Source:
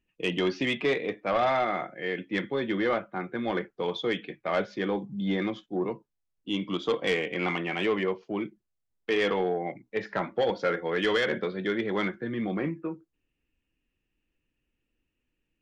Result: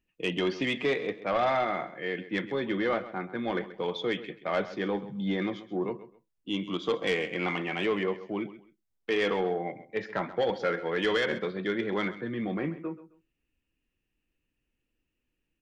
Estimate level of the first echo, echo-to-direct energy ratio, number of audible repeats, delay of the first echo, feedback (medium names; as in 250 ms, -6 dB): -15.0 dB, -15.0 dB, 2, 132 ms, 23%